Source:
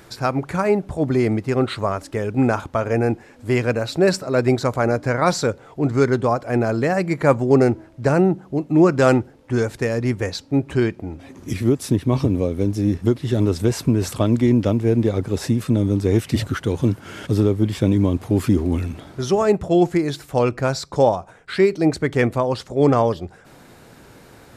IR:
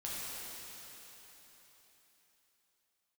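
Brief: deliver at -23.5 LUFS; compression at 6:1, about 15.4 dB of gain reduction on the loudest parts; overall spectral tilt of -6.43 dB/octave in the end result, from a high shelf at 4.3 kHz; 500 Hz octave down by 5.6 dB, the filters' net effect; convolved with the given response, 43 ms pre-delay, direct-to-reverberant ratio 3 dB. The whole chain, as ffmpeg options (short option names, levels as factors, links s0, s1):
-filter_complex "[0:a]equalizer=f=500:t=o:g=-7.5,highshelf=f=4300:g=-7.5,acompressor=threshold=0.0282:ratio=6,asplit=2[s0][s1];[1:a]atrim=start_sample=2205,adelay=43[s2];[s1][s2]afir=irnorm=-1:irlink=0,volume=0.531[s3];[s0][s3]amix=inputs=2:normalize=0,volume=3.16"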